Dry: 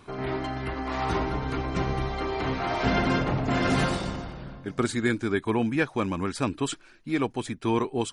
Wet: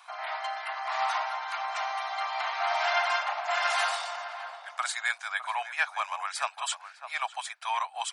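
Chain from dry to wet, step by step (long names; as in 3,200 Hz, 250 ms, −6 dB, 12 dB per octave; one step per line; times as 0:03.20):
Butterworth high-pass 670 Hz 72 dB per octave
on a send: feedback echo with a low-pass in the loop 606 ms, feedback 16%, low-pass 1,200 Hz, level −9 dB
on the sum: level +2 dB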